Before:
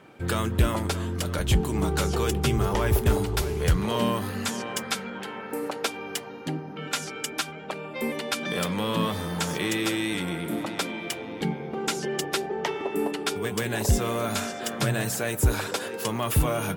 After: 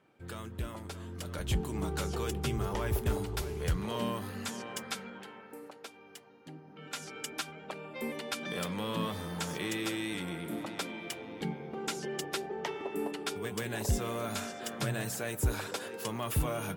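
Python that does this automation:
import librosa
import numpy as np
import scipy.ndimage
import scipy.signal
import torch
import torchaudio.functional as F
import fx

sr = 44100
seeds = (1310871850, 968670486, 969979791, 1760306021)

y = fx.gain(x, sr, db=fx.line((0.81, -16.0), (1.5, -9.0), (5.04, -9.0), (5.79, -19.0), (6.42, -19.0), (7.17, -8.0)))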